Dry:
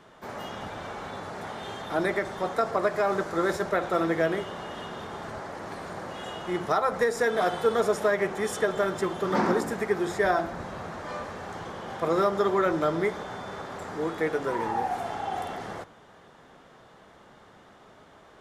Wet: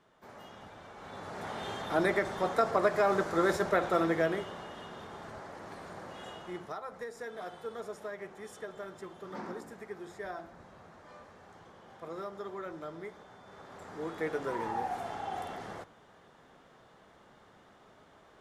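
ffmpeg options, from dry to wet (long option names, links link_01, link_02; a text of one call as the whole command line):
ffmpeg -i in.wav -af "volume=9.5dB,afade=type=in:start_time=0.94:duration=0.65:silence=0.266073,afade=type=out:start_time=3.79:duration=0.96:silence=0.473151,afade=type=out:start_time=6.28:duration=0.5:silence=0.354813,afade=type=in:start_time=13.42:duration=0.96:silence=0.281838" out.wav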